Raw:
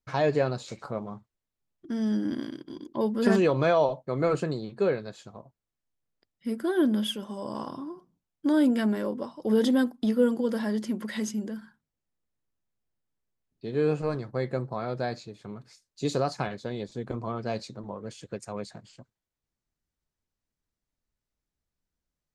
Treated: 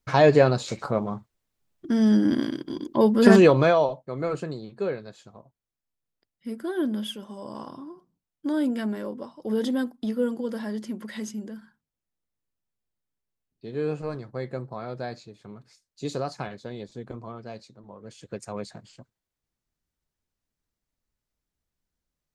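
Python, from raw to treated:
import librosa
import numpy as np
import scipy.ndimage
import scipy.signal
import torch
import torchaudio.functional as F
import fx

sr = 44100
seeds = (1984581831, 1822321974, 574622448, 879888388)

y = fx.gain(x, sr, db=fx.line((3.46, 8.0), (4.03, -3.0), (16.97, -3.0), (17.77, -10.5), (18.39, 1.5)))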